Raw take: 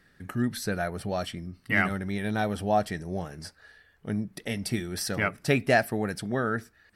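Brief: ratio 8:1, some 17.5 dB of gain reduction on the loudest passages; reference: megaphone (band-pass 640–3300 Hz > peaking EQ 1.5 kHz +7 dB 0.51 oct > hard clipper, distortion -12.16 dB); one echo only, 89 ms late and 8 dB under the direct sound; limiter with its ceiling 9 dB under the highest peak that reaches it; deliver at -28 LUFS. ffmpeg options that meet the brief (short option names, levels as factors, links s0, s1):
-af "acompressor=threshold=0.0158:ratio=8,alimiter=level_in=2.24:limit=0.0631:level=0:latency=1,volume=0.447,highpass=640,lowpass=3300,equalizer=f=1500:t=o:w=0.51:g=7,aecho=1:1:89:0.398,asoftclip=type=hard:threshold=0.0133,volume=7.94"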